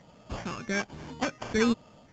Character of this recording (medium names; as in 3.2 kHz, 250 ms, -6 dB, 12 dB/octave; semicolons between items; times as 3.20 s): phasing stages 8, 1.2 Hz, lowest notch 750–2200 Hz; aliases and images of a low sample rate 3.9 kHz, jitter 0%; µ-law